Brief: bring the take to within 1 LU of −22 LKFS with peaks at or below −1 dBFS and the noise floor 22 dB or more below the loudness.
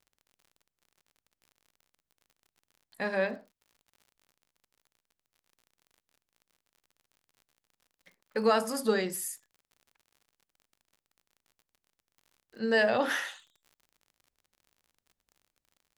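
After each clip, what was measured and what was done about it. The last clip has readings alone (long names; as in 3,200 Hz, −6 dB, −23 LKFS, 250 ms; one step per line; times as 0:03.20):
crackle rate 51 per second; integrated loudness −29.5 LKFS; sample peak −13.5 dBFS; target loudness −22.0 LKFS
→ click removal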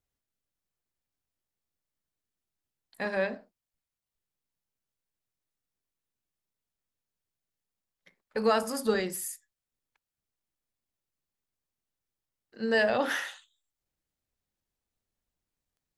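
crackle rate 0.063 per second; integrated loudness −29.5 LKFS; sample peak −13.5 dBFS; target loudness −22.0 LKFS
→ level +7.5 dB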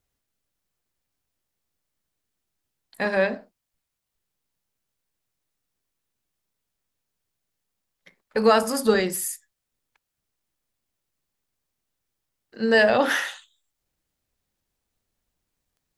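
integrated loudness −22.0 LKFS; sample peak −6.0 dBFS; background noise floor −83 dBFS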